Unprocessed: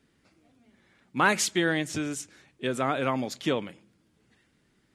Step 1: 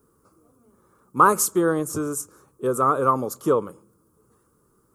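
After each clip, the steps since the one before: FFT filter 110 Hz 0 dB, 260 Hz -4 dB, 460 Hz +7 dB, 710 Hz -7 dB, 1.2 kHz +11 dB, 1.9 kHz -22 dB, 3.7 kHz -19 dB, 5.8 kHz -5 dB, 13 kHz +14 dB; trim +4.5 dB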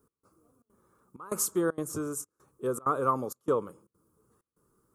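trance gate "x..xxxxx.xxxxx" 194 bpm -24 dB; trim -7 dB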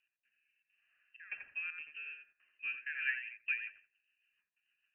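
thinning echo 85 ms, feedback 22%, high-pass 600 Hz, level -3.5 dB; frequency inversion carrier 2.9 kHz; rotary cabinet horn 0.7 Hz, later 6.7 Hz, at 2.63 s; trim -8.5 dB

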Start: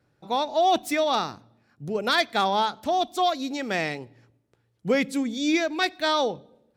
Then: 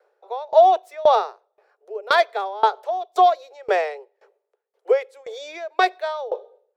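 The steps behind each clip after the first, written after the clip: steep high-pass 400 Hz 96 dB/octave; tilt shelf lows +10 dB, about 1.4 kHz; sawtooth tremolo in dB decaying 1.9 Hz, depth 24 dB; trim +7.5 dB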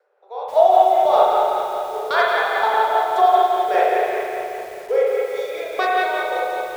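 spring tank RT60 3.2 s, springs 34/53 ms, chirp 80 ms, DRR -7.5 dB; tremolo 5 Hz, depth 32%; bit-crushed delay 173 ms, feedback 55%, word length 6-bit, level -6.5 dB; trim -3.5 dB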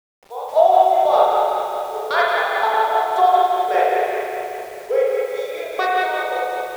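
word length cut 8-bit, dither none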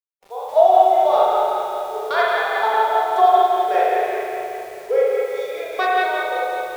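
harmonic-percussive split percussive -7 dB; trim +1 dB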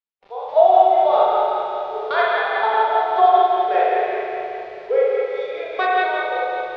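low-pass 4.1 kHz 24 dB/octave

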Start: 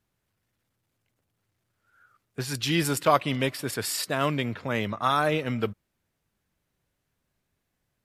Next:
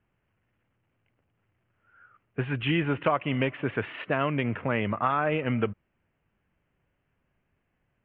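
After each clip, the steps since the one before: steep low-pass 3 kHz 72 dB/octave; compression 4:1, threshold -26 dBFS, peak gain reduction 10 dB; trim +4 dB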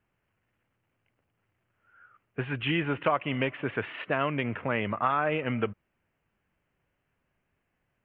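bass shelf 350 Hz -4.5 dB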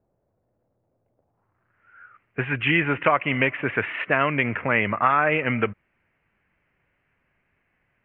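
low-pass sweep 610 Hz -> 2.2 kHz, 1.17–1.87 s; trim +4.5 dB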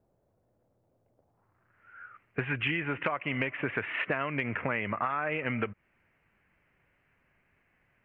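compression 10:1, threshold -27 dBFS, peak gain reduction 13.5 dB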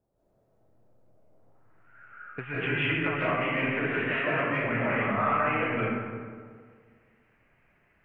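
reverberation RT60 1.9 s, pre-delay 120 ms, DRR -10 dB; trim -6 dB

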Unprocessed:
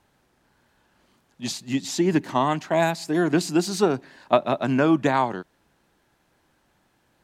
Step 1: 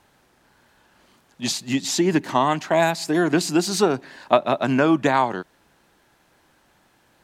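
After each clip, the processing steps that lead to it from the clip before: bass shelf 350 Hz -4.5 dB; in parallel at 0 dB: compression, threshold -28 dBFS, peak gain reduction 14 dB; on the sum: trim +1 dB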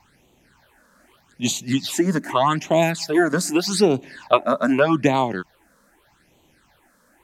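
phase shifter stages 8, 0.82 Hz, lowest notch 100–1600 Hz; trim +4 dB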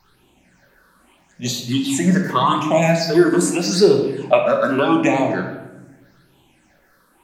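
drifting ripple filter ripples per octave 0.59, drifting -1.3 Hz, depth 11 dB; simulated room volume 450 m³, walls mixed, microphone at 1.1 m; trim -2 dB

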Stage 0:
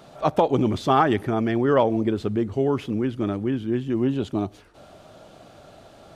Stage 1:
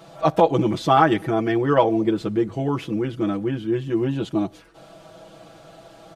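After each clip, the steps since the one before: bass shelf 150 Hz -3 dB; comb 6.1 ms, depth 90%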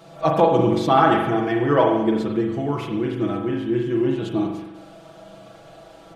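spring tank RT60 1 s, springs 41 ms, chirp 60 ms, DRR 1 dB; trim -1.5 dB

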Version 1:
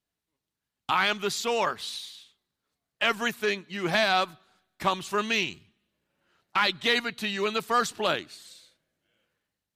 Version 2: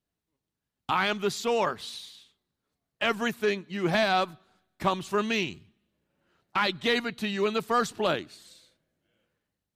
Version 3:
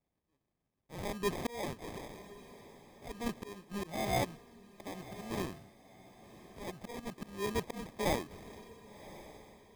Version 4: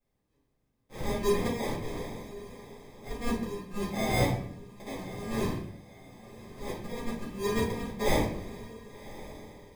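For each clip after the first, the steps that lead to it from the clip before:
tilt shelf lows +4 dB, about 770 Hz
slow attack 757 ms; sample-and-hold 31×; echo that smears into a reverb 1096 ms, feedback 41%, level -16 dB; trim +1 dB
simulated room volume 82 m³, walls mixed, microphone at 2.1 m; trim -3.5 dB

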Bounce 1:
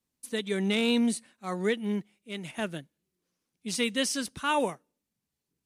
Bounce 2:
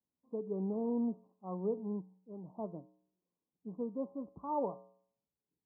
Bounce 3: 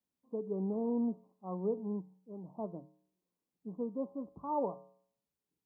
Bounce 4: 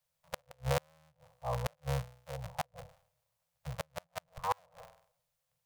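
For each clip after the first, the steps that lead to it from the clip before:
steep low-pass 1.1 kHz 96 dB/octave; bass shelf 71 Hz -11.5 dB; feedback comb 62 Hz, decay 0.59 s, harmonics odd, mix 60%
hum notches 50/100/150 Hz; trim +1 dB
cycle switcher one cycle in 3, inverted; Chebyshev band-stop 170–490 Hz, order 5; inverted gate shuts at -25 dBFS, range -38 dB; trim +8 dB

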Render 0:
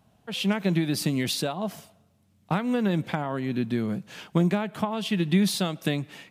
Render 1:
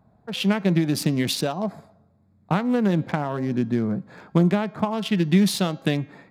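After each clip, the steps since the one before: local Wiener filter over 15 samples; de-hum 270.2 Hz, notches 25; trim +4 dB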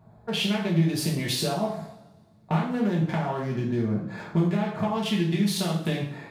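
compression 3:1, threshold -31 dBFS, peak gain reduction 13.5 dB; two-slope reverb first 0.53 s, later 1.8 s, from -24 dB, DRR -5 dB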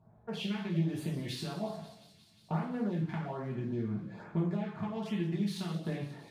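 treble shelf 4.7 kHz -11.5 dB; LFO notch sine 1.2 Hz 510–5400 Hz; feedback echo behind a high-pass 178 ms, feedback 80%, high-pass 3 kHz, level -14 dB; trim -8.5 dB

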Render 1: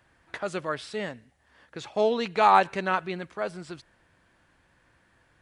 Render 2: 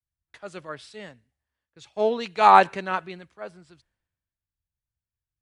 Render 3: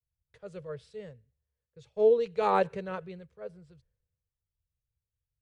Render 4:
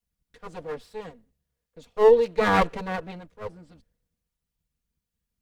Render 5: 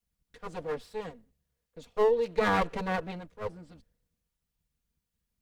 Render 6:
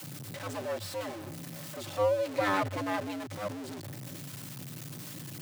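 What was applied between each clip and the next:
three bands expanded up and down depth 100%; trim -4 dB
FFT filter 150 Hz 0 dB, 310 Hz -20 dB, 470 Hz +3 dB, 710 Hz -17 dB; endings held to a fixed fall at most 550 dB/s; trim +3.5 dB
comb filter that takes the minimum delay 4.2 ms; trim +7 dB
compression 5:1, threshold -22 dBFS, peak gain reduction 10 dB
jump at every zero crossing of -32 dBFS; frequency shift +95 Hz; trim -4 dB

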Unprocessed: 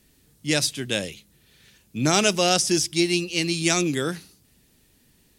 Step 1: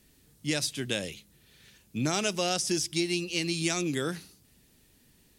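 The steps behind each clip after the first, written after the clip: compression 2.5:1, threshold -25 dBFS, peak gain reduction 8 dB; trim -2 dB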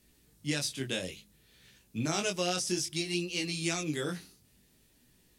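chorus 0.58 Hz, delay 16 ms, depth 6.6 ms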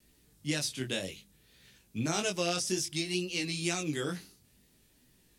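wow and flutter 53 cents

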